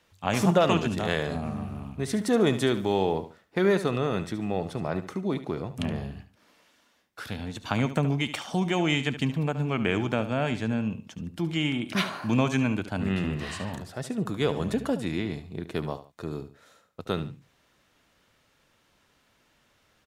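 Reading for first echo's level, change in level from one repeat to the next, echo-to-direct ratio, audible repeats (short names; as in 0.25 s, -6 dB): -12.5 dB, -10.5 dB, -12.0 dB, 2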